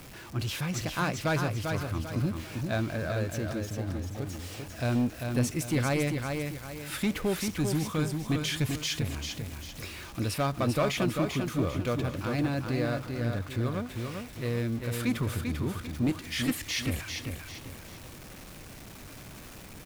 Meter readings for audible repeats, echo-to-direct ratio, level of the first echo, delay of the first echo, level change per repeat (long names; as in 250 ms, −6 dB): 3, −4.5 dB, −5.0 dB, 394 ms, −8.5 dB